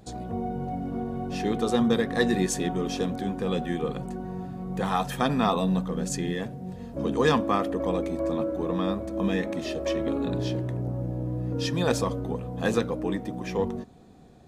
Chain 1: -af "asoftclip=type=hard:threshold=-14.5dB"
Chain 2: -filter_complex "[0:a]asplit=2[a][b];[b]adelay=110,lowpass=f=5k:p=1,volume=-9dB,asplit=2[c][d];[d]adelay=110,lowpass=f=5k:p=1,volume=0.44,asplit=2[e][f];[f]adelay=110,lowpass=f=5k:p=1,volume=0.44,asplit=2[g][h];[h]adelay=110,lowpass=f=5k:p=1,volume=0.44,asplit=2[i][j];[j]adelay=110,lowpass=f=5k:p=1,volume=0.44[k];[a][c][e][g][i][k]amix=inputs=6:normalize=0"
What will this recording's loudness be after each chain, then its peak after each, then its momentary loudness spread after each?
-28.0, -28.0 LUFS; -14.5, -8.0 dBFS; 9, 9 LU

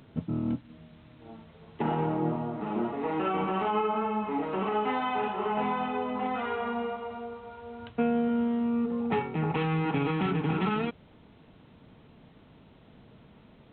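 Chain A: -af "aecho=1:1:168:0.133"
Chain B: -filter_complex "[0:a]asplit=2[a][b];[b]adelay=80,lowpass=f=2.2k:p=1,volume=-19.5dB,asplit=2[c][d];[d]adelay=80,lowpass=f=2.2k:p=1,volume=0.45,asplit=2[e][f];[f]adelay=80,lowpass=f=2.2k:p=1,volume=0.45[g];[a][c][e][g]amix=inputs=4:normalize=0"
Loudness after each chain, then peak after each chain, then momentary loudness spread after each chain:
-30.0, -30.0 LUFS; -15.5, -15.5 dBFS; 11, 11 LU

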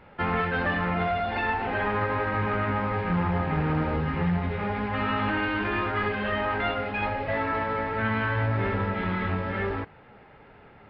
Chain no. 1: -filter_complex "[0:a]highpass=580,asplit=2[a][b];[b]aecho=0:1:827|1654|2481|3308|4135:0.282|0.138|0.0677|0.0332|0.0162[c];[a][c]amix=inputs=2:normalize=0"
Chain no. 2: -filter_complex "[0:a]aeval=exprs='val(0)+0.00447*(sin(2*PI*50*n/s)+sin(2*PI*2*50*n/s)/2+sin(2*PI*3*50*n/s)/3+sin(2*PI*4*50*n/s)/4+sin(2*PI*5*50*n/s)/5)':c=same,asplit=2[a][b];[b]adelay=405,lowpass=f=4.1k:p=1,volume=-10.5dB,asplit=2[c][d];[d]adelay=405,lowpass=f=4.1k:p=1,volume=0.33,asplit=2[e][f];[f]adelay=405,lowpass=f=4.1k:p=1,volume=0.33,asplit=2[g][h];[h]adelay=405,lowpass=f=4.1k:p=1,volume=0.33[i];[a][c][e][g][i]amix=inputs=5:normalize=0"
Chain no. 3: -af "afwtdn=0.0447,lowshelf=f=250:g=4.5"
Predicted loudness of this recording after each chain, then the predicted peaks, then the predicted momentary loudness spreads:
-29.5, -26.5, -26.5 LUFS; -16.0, -13.0, -12.0 dBFS; 6, 3, 4 LU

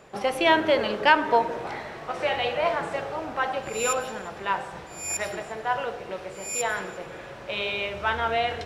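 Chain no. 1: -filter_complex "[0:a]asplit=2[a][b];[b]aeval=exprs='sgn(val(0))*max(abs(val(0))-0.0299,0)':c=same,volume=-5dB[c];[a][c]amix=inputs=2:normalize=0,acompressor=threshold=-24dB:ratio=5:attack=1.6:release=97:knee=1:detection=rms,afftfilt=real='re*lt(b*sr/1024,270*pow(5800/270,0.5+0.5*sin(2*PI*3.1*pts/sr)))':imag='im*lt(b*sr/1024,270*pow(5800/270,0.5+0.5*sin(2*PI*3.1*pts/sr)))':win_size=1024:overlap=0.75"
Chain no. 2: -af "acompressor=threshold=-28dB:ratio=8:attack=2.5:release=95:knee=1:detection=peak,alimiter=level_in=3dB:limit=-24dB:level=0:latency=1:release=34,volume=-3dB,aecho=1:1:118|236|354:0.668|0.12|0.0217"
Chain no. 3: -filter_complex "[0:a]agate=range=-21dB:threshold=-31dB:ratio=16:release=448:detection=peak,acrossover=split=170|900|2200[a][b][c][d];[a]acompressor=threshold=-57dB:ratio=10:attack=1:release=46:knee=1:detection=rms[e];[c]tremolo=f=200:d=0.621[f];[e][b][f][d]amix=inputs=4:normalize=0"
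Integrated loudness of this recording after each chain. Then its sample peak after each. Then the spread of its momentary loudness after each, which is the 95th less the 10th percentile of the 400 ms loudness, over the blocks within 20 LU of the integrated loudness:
-34.0, -34.0, -27.0 LUFS; -15.5, -22.5, -6.5 dBFS; 7, 3, 17 LU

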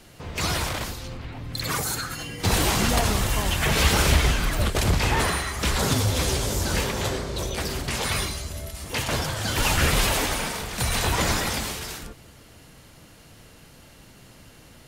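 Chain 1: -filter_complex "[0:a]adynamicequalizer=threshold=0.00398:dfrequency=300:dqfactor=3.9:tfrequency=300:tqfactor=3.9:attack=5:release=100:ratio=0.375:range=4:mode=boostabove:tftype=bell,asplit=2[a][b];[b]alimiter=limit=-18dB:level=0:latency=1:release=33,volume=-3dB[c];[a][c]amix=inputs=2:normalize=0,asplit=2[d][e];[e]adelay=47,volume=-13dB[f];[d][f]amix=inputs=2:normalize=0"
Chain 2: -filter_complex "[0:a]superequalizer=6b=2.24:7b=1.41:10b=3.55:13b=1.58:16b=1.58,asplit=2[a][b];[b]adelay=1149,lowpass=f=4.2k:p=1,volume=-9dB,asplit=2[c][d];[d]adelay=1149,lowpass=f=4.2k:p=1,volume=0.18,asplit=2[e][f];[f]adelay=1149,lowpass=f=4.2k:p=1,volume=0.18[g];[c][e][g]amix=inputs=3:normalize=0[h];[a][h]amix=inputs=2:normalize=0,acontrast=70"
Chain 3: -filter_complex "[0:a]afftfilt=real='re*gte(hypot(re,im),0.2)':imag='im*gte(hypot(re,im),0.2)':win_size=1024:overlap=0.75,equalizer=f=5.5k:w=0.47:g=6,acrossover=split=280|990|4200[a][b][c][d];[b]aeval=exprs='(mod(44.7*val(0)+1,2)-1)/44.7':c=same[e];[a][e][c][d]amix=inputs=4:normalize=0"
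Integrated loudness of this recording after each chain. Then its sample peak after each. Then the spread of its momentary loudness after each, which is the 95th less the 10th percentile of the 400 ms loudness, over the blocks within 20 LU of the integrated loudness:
-20.5, -15.0, -29.0 LUFS; -4.5, -2.0, -9.5 dBFS; 10, 12, 17 LU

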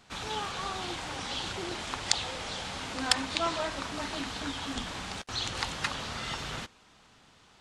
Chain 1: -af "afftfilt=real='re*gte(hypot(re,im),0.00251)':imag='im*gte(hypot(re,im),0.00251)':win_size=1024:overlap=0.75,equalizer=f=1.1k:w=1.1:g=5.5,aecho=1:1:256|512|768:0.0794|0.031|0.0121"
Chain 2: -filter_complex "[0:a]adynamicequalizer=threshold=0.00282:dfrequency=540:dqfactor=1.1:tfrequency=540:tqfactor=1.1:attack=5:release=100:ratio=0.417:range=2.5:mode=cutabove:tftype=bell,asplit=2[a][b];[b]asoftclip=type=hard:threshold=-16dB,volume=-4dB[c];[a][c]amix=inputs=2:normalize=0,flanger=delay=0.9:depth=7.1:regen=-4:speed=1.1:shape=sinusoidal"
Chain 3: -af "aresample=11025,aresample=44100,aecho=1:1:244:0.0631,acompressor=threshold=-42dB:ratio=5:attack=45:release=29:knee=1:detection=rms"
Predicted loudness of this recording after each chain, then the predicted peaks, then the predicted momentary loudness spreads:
-31.5, -33.0, -39.0 LUFS; -3.5, -7.5, -18.5 dBFS; 7, 7, 5 LU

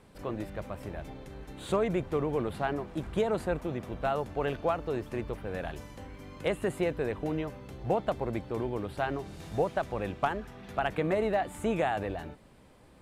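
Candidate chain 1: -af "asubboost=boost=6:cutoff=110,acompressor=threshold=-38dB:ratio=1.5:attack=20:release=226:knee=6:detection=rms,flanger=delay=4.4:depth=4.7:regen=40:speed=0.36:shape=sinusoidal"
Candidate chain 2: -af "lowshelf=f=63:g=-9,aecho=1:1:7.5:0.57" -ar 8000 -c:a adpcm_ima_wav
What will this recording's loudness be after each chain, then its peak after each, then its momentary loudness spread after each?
-41.0, -32.0 LUFS; -23.0, -14.0 dBFS; 8, 11 LU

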